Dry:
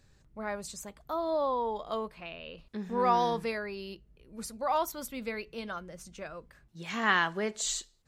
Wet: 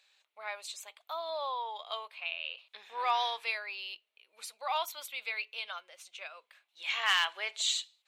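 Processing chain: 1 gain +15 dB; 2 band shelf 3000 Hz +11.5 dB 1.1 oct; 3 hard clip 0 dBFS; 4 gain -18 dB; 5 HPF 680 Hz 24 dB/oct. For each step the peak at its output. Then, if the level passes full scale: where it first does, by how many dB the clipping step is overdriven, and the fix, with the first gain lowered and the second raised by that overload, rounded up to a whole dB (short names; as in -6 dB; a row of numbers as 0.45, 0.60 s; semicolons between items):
+3.0, +8.0, 0.0, -18.0, -13.0 dBFS; step 1, 8.0 dB; step 1 +7 dB, step 4 -10 dB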